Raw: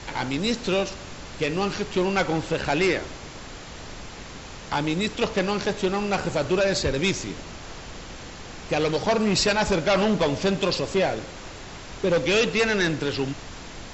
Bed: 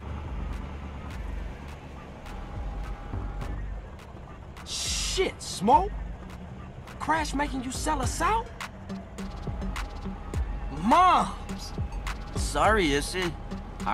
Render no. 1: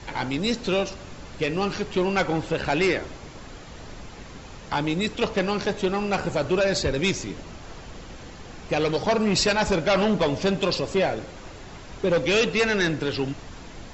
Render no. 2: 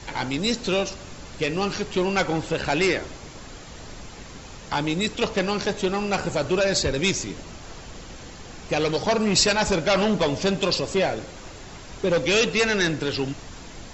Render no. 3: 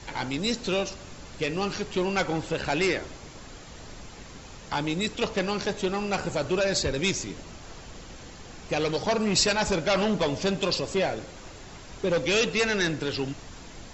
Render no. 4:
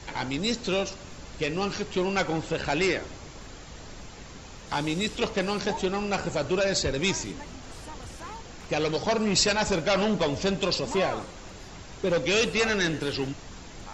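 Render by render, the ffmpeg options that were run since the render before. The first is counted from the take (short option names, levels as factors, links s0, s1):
-af "afftdn=nr=6:nf=-40"
-af "highshelf=f=6400:g=11"
-af "volume=0.668"
-filter_complex "[1:a]volume=0.15[s0];[0:a][s0]amix=inputs=2:normalize=0"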